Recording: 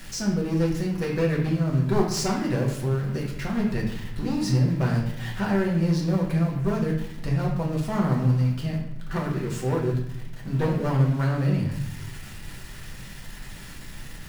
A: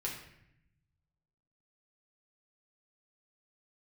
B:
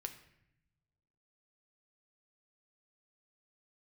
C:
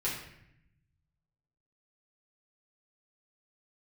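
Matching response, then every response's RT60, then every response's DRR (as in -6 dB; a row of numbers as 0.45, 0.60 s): A; 0.75, 0.80, 0.75 s; -3.5, 6.0, -8.0 dB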